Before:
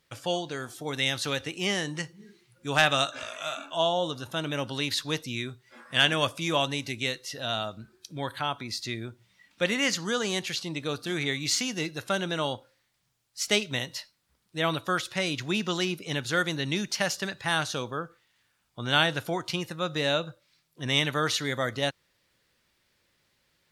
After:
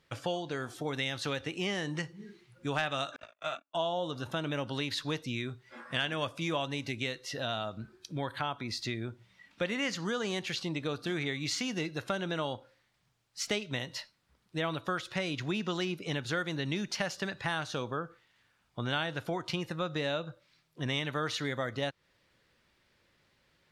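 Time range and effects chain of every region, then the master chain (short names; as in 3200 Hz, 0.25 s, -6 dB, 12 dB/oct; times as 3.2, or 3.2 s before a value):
3.16–3.75 gate -36 dBFS, range -52 dB + high shelf 5700 Hz -8 dB
whole clip: LPF 3000 Hz 6 dB/oct; compressor 3:1, threshold -35 dBFS; gain +3 dB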